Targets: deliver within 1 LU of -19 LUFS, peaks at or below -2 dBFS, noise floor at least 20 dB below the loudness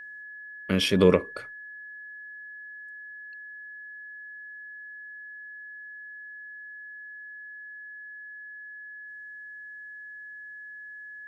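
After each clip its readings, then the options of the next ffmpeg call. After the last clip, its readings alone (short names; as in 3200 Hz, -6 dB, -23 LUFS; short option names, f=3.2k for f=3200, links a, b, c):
steady tone 1700 Hz; tone level -40 dBFS; loudness -33.5 LUFS; peak -6.5 dBFS; loudness target -19.0 LUFS
-> -af "bandreject=f=1.7k:w=30"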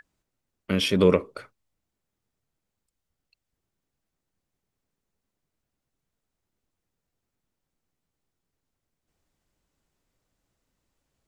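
steady tone none; loudness -23.0 LUFS; peak -6.5 dBFS; loudness target -19.0 LUFS
-> -af "volume=4dB"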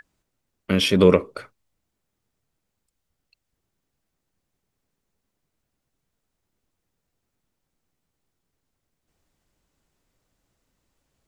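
loudness -19.0 LUFS; peak -2.5 dBFS; noise floor -80 dBFS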